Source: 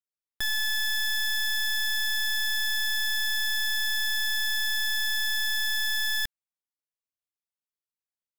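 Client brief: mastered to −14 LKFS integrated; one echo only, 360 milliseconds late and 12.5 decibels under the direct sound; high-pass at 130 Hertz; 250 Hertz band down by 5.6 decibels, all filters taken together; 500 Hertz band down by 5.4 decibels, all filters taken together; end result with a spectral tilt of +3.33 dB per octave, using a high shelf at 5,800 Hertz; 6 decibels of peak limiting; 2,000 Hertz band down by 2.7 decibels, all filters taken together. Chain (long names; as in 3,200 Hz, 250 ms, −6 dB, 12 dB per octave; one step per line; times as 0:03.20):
high-pass filter 130 Hz
parametric band 250 Hz −5 dB
parametric band 500 Hz −6 dB
parametric band 2,000 Hz −3.5 dB
high-shelf EQ 5,800 Hz +8.5 dB
brickwall limiter −21.5 dBFS
single-tap delay 360 ms −12.5 dB
level +16 dB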